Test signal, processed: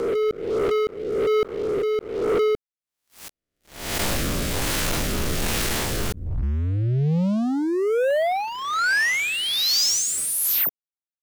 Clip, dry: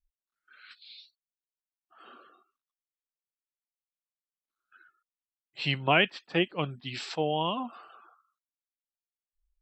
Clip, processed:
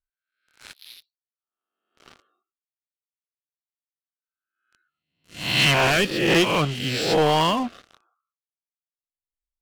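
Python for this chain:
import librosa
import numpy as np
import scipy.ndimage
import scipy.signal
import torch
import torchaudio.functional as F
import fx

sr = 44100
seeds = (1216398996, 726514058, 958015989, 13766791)

y = fx.spec_swells(x, sr, rise_s=0.86)
y = fx.leveller(y, sr, passes=5)
y = fx.rotary(y, sr, hz=1.2)
y = y * 10.0 ** (-4.5 / 20.0)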